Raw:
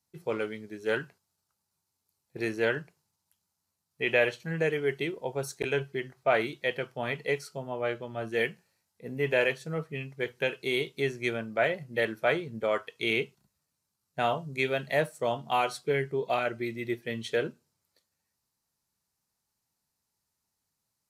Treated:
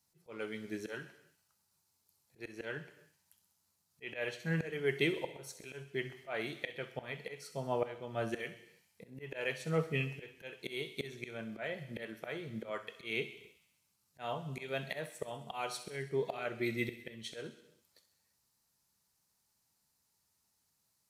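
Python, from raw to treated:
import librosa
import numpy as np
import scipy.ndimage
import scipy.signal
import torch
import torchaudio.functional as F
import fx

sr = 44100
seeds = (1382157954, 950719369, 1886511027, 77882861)

p1 = fx.high_shelf(x, sr, hz=2000.0, db=3.0)
p2 = fx.auto_swell(p1, sr, attack_ms=480.0)
p3 = p2 + fx.echo_wet_highpass(p2, sr, ms=65, feedback_pct=62, hz=2900.0, wet_db=-10.5, dry=0)
p4 = fx.rev_gated(p3, sr, seeds[0], gate_ms=360, shape='falling', drr_db=11.5)
y = F.gain(torch.from_numpy(p4), 1.0).numpy()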